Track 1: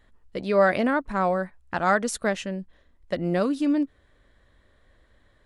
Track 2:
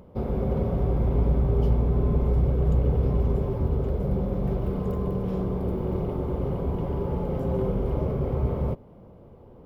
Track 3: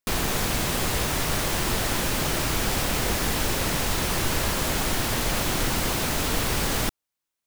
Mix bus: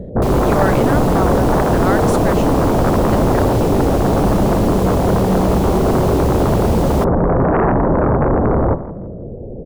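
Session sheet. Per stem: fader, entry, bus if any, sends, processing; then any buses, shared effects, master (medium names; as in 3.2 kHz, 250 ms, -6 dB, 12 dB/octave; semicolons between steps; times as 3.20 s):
0.0 dB, 0.00 s, no send, no echo send, none
-0.5 dB, 0.00 s, no send, echo send -15.5 dB, steep low-pass 670 Hz 48 dB/octave; sine folder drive 17 dB, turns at -10 dBFS; de-hum 81.25 Hz, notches 14
-6.0 dB, 0.15 s, no send, no echo send, none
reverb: none
echo: feedback delay 165 ms, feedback 30%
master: none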